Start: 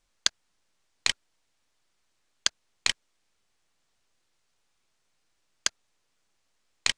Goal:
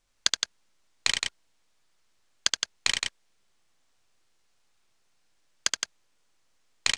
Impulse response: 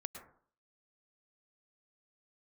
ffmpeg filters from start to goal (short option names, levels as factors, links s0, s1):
-af "aecho=1:1:72.89|166.2:0.631|0.562"